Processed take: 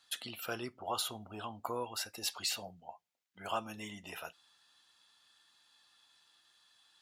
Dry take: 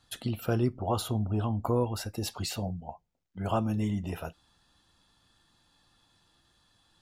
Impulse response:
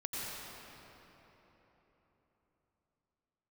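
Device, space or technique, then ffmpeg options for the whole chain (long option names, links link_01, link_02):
filter by subtraction: -filter_complex "[0:a]asplit=2[link_01][link_02];[link_02]lowpass=2300,volume=-1[link_03];[link_01][link_03]amix=inputs=2:normalize=0"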